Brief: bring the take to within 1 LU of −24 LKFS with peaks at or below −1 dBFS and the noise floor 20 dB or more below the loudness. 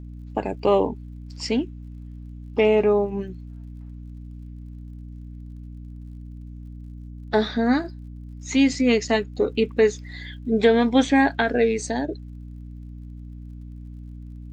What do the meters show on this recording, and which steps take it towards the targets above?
crackle rate 49 per second; mains hum 60 Hz; hum harmonics up to 300 Hz; level of the hum −35 dBFS; integrated loudness −22.0 LKFS; sample peak −6.0 dBFS; target loudness −24.0 LKFS
→ click removal
mains-hum notches 60/120/180/240/300 Hz
level −2 dB

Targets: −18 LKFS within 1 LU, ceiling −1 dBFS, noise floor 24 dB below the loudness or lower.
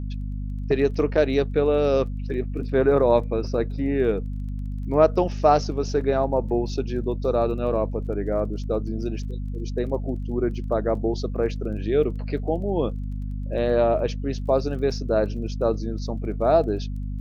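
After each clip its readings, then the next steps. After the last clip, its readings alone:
crackle rate 20 per second; mains hum 50 Hz; hum harmonics up to 250 Hz; level of the hum −27 dBFS; integrated loudness −24.5 LKFS; sample peak −4.0 dBFS; target loudness −18.0 LKFS
→ click removal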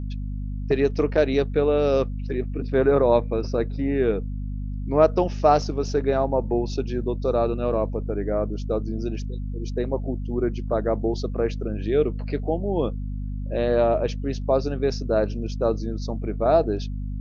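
crackle rate 0 per second; mains hum 50 Hz; hum harmonics up to 250 Hz; level of the hum −27 dBFS
→ hum removal 50 Hz, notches 5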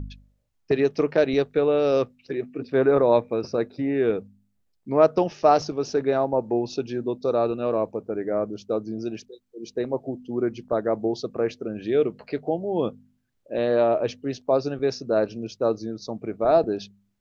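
mains hum none found; integrated loudness −24.5 LKFS; sample peak −4.0 dBFS; target loudness −18.0 LKFS
→ level +6.5 dB
brickwall limiter −1 dBFS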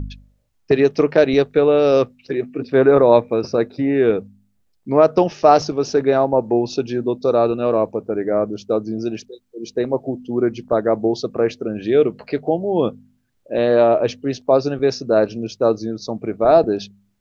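integrated loudness −18.0 LKFS; sample peak −1.0 dBFS; background noise floor −64 dBFS

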